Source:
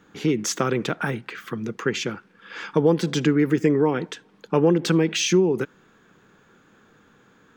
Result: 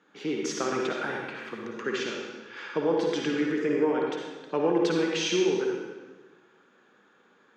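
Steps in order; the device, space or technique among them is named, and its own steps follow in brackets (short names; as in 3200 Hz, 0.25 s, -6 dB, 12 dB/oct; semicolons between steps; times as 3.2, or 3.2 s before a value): supermarket ceiling speaker (BPF 280–5600 Hz; reverb RT60 1.3 s, pre-delay 48 ms, DRR -1 dB); gain -7 dB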